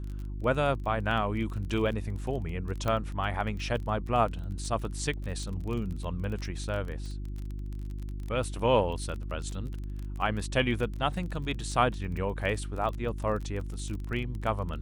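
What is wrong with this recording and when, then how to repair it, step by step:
crackle 27/s -35 dBFS
hum 50 Hz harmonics 7 -36 dBFS
2.88 pop -17 dBFS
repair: de-click; de-hum 50 Hz, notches 7

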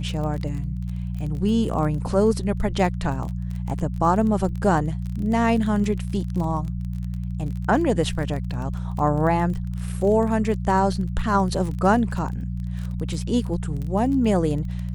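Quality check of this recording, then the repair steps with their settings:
crackle 27/s -29 dBFS
hum 60 Hz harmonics 3 -28 dBFS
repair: de-click; de-hum 60 Hz, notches 3

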